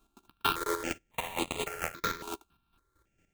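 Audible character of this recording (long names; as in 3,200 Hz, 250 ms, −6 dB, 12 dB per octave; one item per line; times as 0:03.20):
a buzz of ramps at a fixed pitch in blocks of 32 samples
chopped level 4.4 Hz, depth 60%, duty 30%
aliases and images of a low sample rate 5,200 Hz, jitter 20%
notches that jump at a steady rate 3.6 Hz 520–5,500 Hz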